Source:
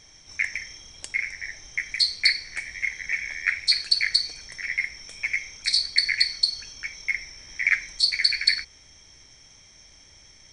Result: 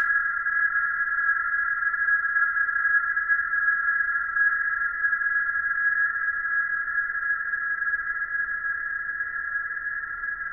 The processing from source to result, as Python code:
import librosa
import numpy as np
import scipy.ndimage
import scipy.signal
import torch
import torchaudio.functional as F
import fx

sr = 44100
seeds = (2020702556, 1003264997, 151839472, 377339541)

y = fx.freq_compress(x, sr, knee_hz=1200.0, ratio=4.0)
y = fx.paulstretch(y, sr, seeds[0], factor=30.0, window_s=1.0, from_s=4.06)
y = fx.rev_double_slope(y, sr, seeds[1], early_s=0.3, late_s=1.8, knee_db=-20, drr_db=12.0)
y = y * librosa.db_to_amplitude(-3.5)